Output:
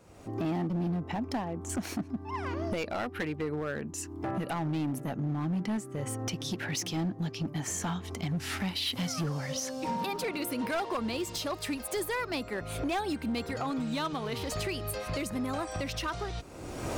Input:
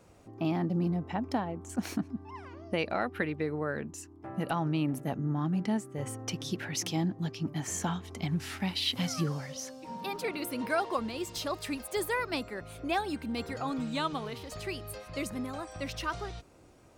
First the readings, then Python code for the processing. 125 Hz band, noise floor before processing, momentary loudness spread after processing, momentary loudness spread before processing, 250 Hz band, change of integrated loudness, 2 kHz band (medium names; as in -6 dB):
+0.5 dB, -54 dBFS, 4 LU, 10 LU, +0.5 dB, 0.0 dB, 0.0 dB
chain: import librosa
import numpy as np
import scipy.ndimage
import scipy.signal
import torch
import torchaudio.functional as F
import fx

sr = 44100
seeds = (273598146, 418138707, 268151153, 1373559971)

y = fx.recorder_agc(x, sr, target_db=-24.5, rise_db_per_s=36.0, max_gain_db=30)
y = np.clip(10.0 ** (27.0 / 20.0) * y, -1.0, 1.0) / 10.0 ** (27.0 / 20.0)